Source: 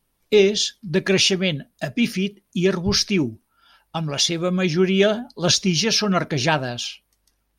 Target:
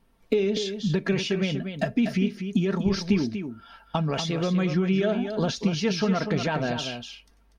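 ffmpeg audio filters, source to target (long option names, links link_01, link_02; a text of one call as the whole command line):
ffmpeg -i in.wav -filter_complex "[0:a]alimiter=limit=-12dB:level=0:latency=1,acompressor=threshold=-30dB:ratio=6,lowpass=frequency=1800:poles=1,aecho=1:1:4.4:0.38,asplit=2[link_01][link_02];[link_02]aecho=0:1:242:0.398[link_03];[link_01][link_03]amix=inputs=2:normalize=0,volume=7.5dB" out.wav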